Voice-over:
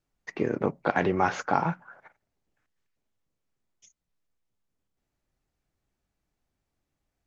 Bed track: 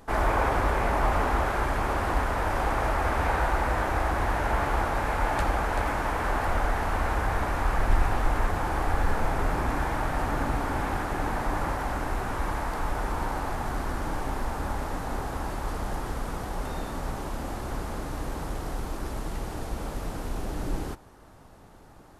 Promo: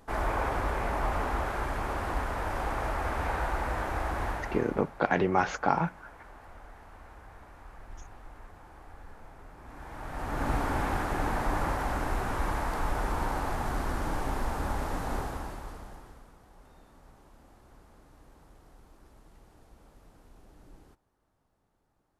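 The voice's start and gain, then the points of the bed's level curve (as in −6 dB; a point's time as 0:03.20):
4.15 s, −1.0 dB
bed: 0:04.28 −5.5 dB
0:05.00 −23.5 dB
0:09.56 −23.5 dB
0:10.51 −1 dB
0:15.18 −1 dB
0:16.36 −23.5 dB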